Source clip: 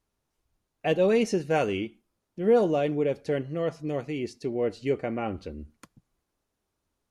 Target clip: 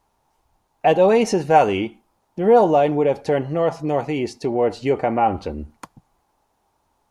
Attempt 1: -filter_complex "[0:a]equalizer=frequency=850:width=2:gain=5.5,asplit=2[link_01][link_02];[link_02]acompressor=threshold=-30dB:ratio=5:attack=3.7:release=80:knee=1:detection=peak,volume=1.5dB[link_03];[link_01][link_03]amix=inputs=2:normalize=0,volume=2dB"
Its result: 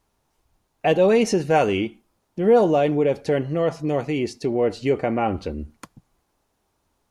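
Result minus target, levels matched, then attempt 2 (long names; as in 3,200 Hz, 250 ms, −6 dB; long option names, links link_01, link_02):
1,000 Hz band −4.5 dB
-filter_complex "[0:a]equalizer=frequency=850:width=2:gain=15.5,asplit=2[link_01][link_02];[link_02]acompressor=threshold=-30dB:ratio=5:attack=3.7:release=80:knee=1:detection=peak,volume=1.5dB[link_03];[link_01][link_03]amix=inputs=2:normalize=0,volume=2dB"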